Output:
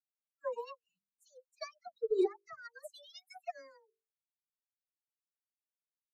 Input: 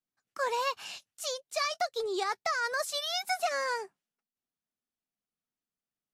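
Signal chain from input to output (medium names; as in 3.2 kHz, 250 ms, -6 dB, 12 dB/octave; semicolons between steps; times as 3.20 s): expander on every frequency bin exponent 3; resonant low shelf 580 Hz +8 dB, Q 1.5; hum notches 50/100/150/200/250/300/350/400/450 Hz; phase dispersion lows, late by 72 ms, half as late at 940 Hz; upward expansion 2.5:1, over -41 dBFS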